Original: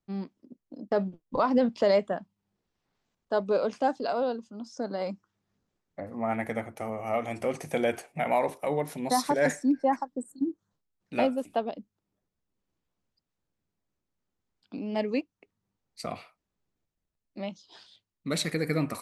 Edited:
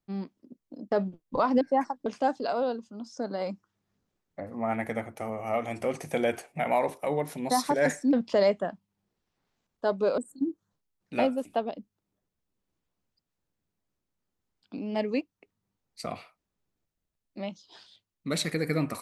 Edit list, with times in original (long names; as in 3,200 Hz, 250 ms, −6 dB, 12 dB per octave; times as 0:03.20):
0:01.61–0:03.66: swap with 0:09.73–0:10.18